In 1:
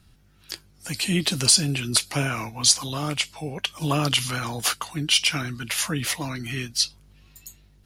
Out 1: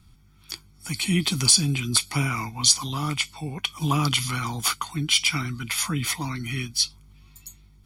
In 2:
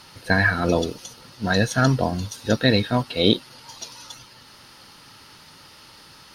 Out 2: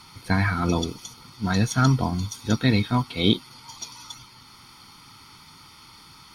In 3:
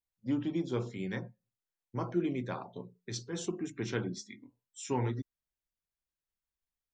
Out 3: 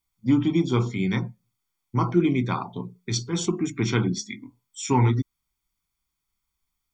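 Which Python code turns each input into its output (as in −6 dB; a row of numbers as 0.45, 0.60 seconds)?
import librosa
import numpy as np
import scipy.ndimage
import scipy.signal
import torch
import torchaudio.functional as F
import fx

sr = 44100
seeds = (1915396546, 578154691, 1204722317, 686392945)

y = x + 0.69 * np.pad(x, (int(0.9 * sr / 1000.0), 0))[:len(x)]
y = y * 10.0 ** (-26 / 20.0) / np.sqrt(np.mean(np.square(y)))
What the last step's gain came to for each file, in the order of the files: −2.0, −3.0, +10.0 decibels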